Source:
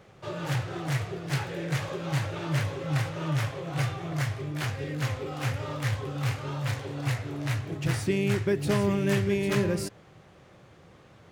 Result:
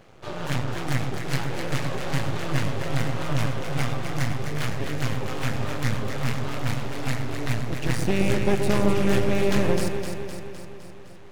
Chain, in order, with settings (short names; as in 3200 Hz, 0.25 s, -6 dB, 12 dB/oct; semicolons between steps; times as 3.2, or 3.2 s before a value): half-wave rectifier; echo with dull and thin repeats by turns 0.128 s, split 1000 Hz, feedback 77%, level -4 dB; gain +5.5 dB